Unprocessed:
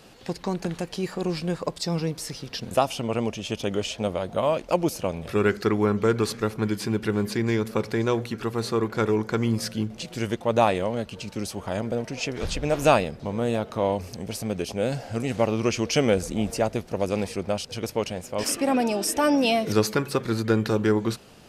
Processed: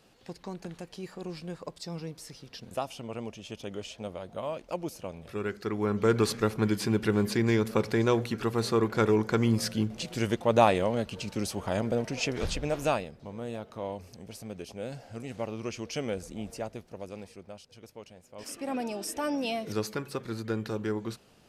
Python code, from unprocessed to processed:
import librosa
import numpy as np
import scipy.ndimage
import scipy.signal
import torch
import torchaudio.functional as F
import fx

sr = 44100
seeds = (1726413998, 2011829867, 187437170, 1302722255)

y = fx.gain(x, sr, db=fx.line((5.59, -11.5), (6.16, -1.0), (12.38, -1.0), (13.08, -12.0), (16.59, -12.0), (17.66, -20.0), (18.24, -20.0), (18.74, -10.0)))